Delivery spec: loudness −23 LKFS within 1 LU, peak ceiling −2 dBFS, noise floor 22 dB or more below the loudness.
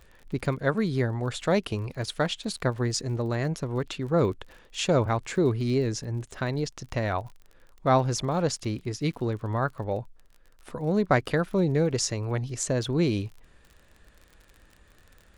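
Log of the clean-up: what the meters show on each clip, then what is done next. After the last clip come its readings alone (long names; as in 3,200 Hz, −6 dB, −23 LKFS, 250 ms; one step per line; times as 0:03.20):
crackle rate 39 per second; integrated loudness −27.5 LKFS; sample peak −8.0 dBFS; target loudness −23.0 LKFS
→ click removal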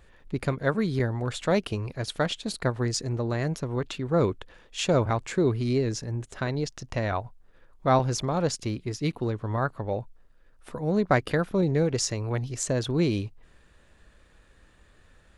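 crackle rate 0 per second; integrated loudness −27.5 LKFS; sample peak −8.0 dBFS; target loudness −23.0 LKFS
→ level +4.5 dB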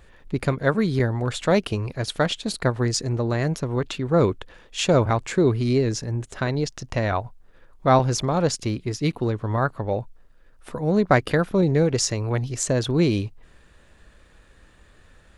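integrated loudness −23.0 LKFS; sample peak −3.5 dBFS; background noise floor −54 dBFS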